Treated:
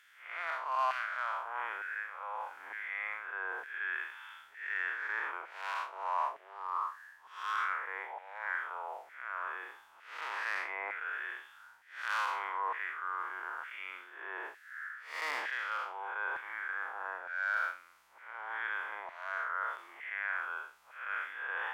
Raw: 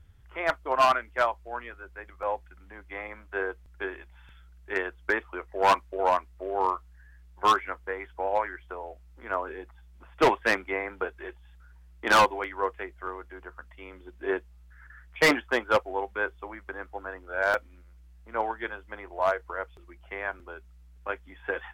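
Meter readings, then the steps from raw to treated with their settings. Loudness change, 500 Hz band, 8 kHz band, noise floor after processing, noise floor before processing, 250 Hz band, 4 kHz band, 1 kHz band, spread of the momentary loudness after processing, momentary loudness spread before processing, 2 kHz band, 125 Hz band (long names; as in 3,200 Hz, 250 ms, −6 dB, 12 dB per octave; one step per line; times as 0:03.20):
−9.0 dB, −20.5 dB, −14.5 dB, −60 dBFS, −53 dBFS, below −25 dB, −12.0 dB, −8.5 dB, 10 LU, 19 LU, −4.0 dB, below −40 dB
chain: spectrum smeared in time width 186 ms
reversed playback
downward compressor 5 to 1, threshold −45 dBFS, peak gain reduction 20.5 dB
reversed playback
auto-filter high-pass saw down 1.1 Hz 870–1,800 Hz
level +8.5 dB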